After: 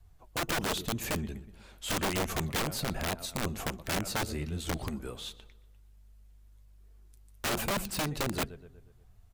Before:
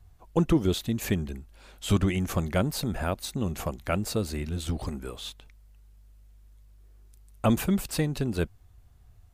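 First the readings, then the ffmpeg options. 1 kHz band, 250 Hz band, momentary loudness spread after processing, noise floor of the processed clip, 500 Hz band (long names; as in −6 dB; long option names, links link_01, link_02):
+0.5 dB, −9.0 dB, 10 LU, −58 dBFS, −5.5 dB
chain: -filter_complex "[0:a]flanger=delay=4.4:depth=4.9:regen=61:speed=1.3:shape=sinusoidal,adynamicequalizer=threshold=0.00708:dfrequency=210:dqfactor=3.6:tfrequency=210:tqfactor=3.6:attack=5:release=100:ratio=0.375:range=1.5:mode=cutabove:tftype=bell,asplit=2[link_01][link_02];[link_02]adelay=121,lowpass=frequency=3400:poles=1,volume=-17.5dB,asplit=2[link_03][link_04];[link_04]adelay=121,lowpass=frequency=3400:poles=1,volume=0.53,asplit=2[link_05][link_06];[link_06]adelay=121,lowpass=frequency=3400:poles=1,volume=0.53,asplit=2[link_07][link_08];[link_08]adelay=121,lowpass=frequency=3400:poles=1,volume=0.53,asplit=2[link_09][link_10];[link_10]adelay=121,lowpass=frequency=3400:poles=1,volume=0.53[link_11];[link_01][link_03][link_05][link_07][link_09][link_11]amix=inputs=6:normalize=0,aeval=exprs='(mod(21.1*val(0)+1,2)-1)/21.1':channel_layout=same,volume=1.5dB"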